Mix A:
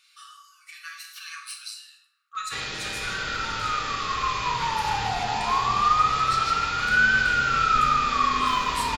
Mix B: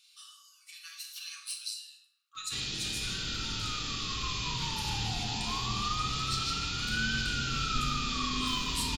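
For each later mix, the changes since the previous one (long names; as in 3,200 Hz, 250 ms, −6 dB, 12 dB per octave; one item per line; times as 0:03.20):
master: add flat-topped bell 980 Hz −15 dB 2.6 octaves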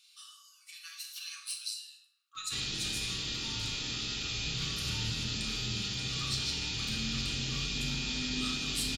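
second sound: muted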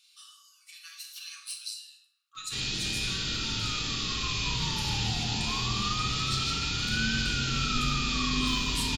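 first sound: send +7.5 dB
second sound: unmuted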